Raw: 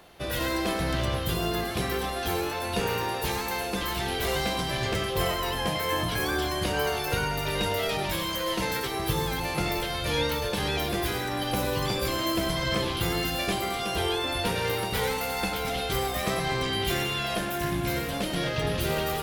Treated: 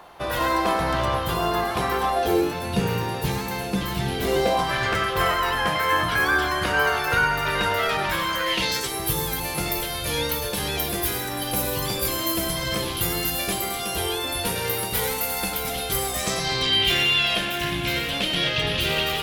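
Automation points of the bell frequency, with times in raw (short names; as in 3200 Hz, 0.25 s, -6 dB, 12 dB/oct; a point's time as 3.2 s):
bell +13 dB 1.3 oct
2.09 s 980 Hz
2.6 s 150 Hz
4.13 s 150 Hz
4.74 s 1400 Hz
8.39 s 1400 Hz
8.99 s 13000 Hz
15.9 s 13000 Hz
16.81 s 3000 Hz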